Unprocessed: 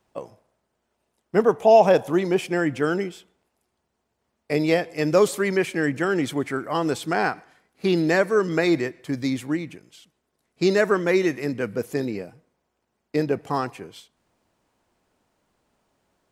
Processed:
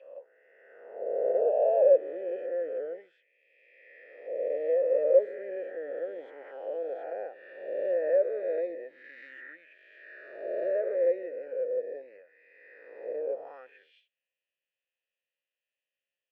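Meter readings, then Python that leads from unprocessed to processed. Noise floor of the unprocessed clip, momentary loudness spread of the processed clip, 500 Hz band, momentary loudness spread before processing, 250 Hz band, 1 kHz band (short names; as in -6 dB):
-77 dBFS, 22 LU, -5.0 dB, 10 LU, -25.0 dB, -16.0 dB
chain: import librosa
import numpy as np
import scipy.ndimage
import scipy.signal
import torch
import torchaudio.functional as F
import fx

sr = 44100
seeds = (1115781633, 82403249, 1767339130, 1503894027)

y = fx.spec_swells(x, sr, rise_s=2.32)
y = fx.vowel_filter(y, sr, vowel='e')
y = fx.auto_wah(y, sr, base_hz=590.0, top_hz=3000.0, q=3.0, full_db=-27.5, direction='down')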